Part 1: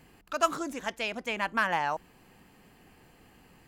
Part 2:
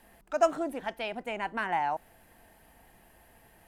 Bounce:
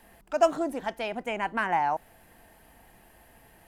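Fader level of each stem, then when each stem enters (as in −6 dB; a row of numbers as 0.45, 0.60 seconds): −13.0, +2.5 decibels; 0.00, 0.00 seconds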